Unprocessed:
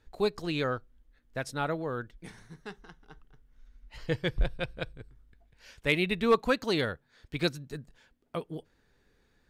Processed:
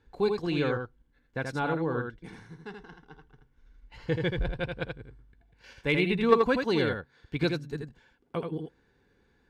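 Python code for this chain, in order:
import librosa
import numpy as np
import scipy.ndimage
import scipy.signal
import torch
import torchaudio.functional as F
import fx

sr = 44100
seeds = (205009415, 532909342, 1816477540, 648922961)

p1 = fx.lowpass(x, sr, hz=2800.0, slope=6)
p2 = fx.level_steps(p1, sr, step_db=19)
p3 = p1 + (p2 * 10.0 ** (0.0 / 20.0))
p4 = fx.notch_comb(p3, sr, f0_hz=630.0)
y = p4 + 10.0 ** (-5.0 / 20.0) * np.pad(p4, (int(81 * sr / 1000.0), 0))[:len(p4)]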